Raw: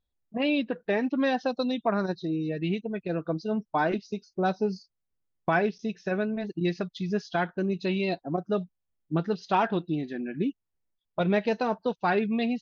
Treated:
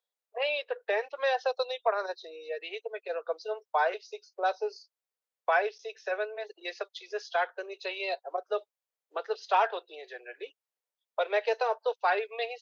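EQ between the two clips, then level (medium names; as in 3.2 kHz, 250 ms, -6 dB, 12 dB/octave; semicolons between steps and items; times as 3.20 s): steep high-pass 430 Hz 72 dB/octave; 0.0 dB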